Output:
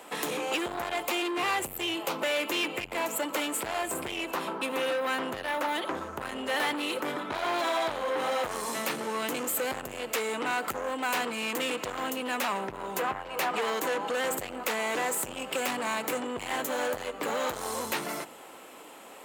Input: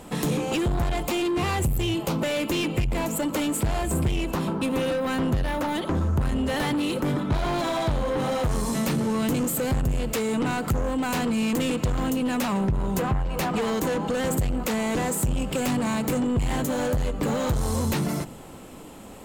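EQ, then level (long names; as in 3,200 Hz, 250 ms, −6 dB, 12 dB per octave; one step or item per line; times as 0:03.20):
three-way crossover with the lows and the highs turned down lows −18 dB, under 290 Hz, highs −12 dB, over 3,000 Hz
spectral tilt +3 dB per octave
0.0 dB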